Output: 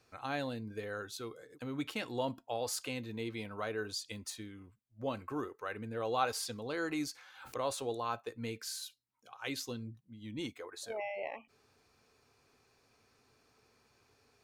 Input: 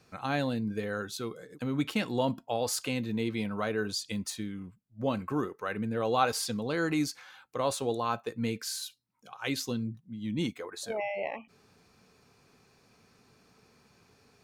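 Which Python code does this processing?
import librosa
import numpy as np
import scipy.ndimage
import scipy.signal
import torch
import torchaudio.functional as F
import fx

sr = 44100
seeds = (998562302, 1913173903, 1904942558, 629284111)

y = fx.peak_eq(x, sr, hz=180.0, db=-13.0, octaves=0.57)
y = fx.pre_swell(y, sr, db_per_s=88.0, at=(6.97, 7.85))
y = F.gain(torch.from_numpy(y), -5.5).numpy()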